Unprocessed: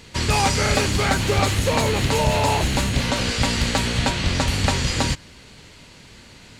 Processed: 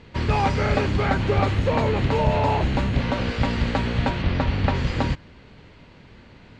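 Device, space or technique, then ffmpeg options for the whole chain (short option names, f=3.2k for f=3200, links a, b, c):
phone in a pocket: -filter_complex "[0:a]asettb=1/sr,asplit=3[a][b][c];[a]atrim=end=4.224[d];[b]atrim=start=4.22:end=4.75,asetpts=PTS-STARTPTS,afade=t=in:d=0.004:c=qsin,afade=t=out:st=0.526:d=0.004:c=qsin,lowpass=5.2k[e];[c]atrim=start=4.746[f];[d][e]acrossfade=d=0.004:c1=hsin:c2=qsin[g];[g][f]acrossfade=d=0.004:c1=qsin:c2=hsin,lowpass=3.5k,highshelf=f=2.1k:g=-9"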